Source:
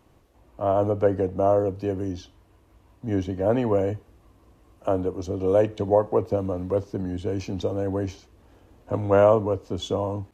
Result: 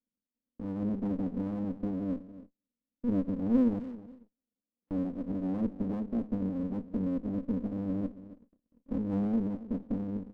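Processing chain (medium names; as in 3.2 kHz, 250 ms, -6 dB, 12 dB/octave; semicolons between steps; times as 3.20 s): Butterworth band-pass 230 Hz, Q 3.3; in parallel at +2.5 dB: compression 6:1, threshold -50 dBFS, peak gain reduction 22.5 dB; 3.79–4.91 s: on the sum: valve stage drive 55 dB, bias 0.5; on a send: feedback delay 272 ms, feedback 28%, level -16 dB; on the sum: gate -53 dBFS, range -35 dB; sliding maximum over 33 samples; trim +4 dB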